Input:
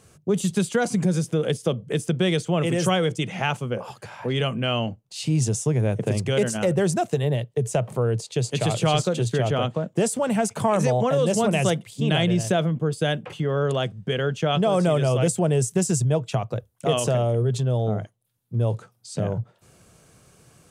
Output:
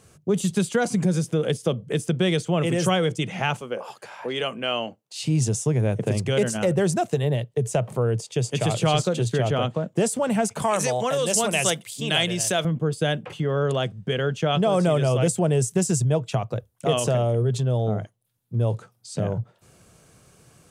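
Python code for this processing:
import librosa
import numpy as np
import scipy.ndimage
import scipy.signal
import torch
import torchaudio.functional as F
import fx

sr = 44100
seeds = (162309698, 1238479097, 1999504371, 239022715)

y = fx.highpass(x, sr, hz=330.0, slope=12, at=(3.61, 5.2))
y = fx.notch(y, sr, hz=4100.0, q=6.4, at=(7.97, 8.71))
y = fx.tilt_eq(y, sr, slope=3.0, at=(10.62, 12.65))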